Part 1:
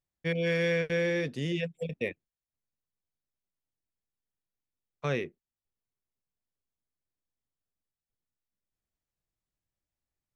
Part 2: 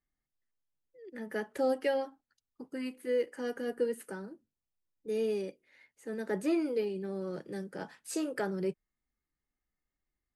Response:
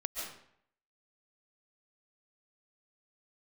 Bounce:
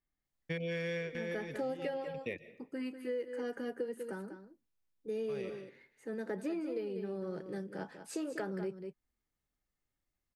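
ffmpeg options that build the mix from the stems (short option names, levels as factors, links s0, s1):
-filter_complex "[0:a]adelay=250,volume=0.75,asplit=2[s0][s1];[s1]volume=0.119[s2];[1:a]highshelf=f=4800:g=-8,volume=0.891,asplit=3[s3][s4][s5];[s4]volume=0.299[s6];[s5]apad=whole_len=467560[s7];[s0][s7]sidechaincompress=threshold=0.00224:ratio=3:attack=16:release=238[s8];[2:a]atrim=start_sample=2205[s9];[s2][s9]afir=irnorm=-1:irlink=0[s10];[s6]aecho=0:1:194:1[s11];[s8][s3][s10][s11]amix=inputs=4:normalize=0,acompressor=threshold=0.02:ratio=6"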